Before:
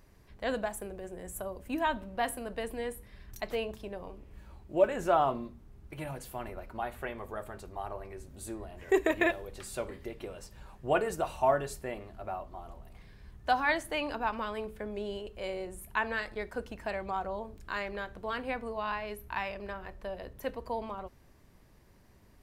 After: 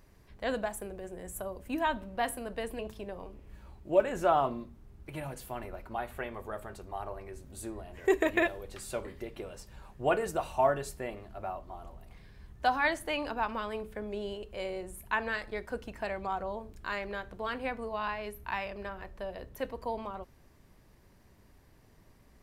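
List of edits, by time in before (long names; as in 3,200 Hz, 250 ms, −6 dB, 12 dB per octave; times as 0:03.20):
0:02.79–0:03.63: remove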